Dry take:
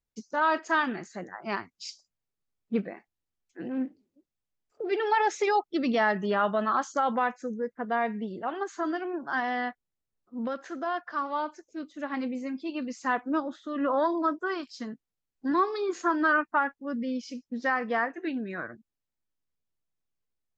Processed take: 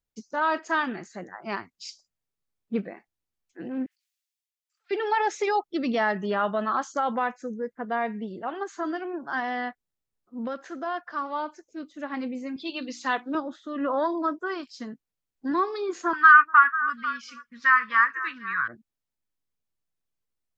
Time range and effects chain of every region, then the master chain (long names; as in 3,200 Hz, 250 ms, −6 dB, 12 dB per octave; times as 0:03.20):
0:03.86–0:04.91: Bessel high-pass filter 2,600 Hz, order 6 + level that may fall only so fast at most 25 dB per second
0:12.56–0:13.35: high-pass filter 190 Hz + parametric band 3,700 Hz +14.5 dB 0.85 octaves + mains-hum notches 60/120/180/240/300/360 Hz
0:16.13–0:18.68: drawn EQ curve 120 Hz 0 dB, 270 Hz −16 dB, 730 Hz −26 dB, 1,100 Hz +14 dB, 4,900 Hz 0 dB + echo through a band-pass that steps 247 ms, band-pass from 550 Hz, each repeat 1.4 octaves, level −10 dB
whole clip: no processing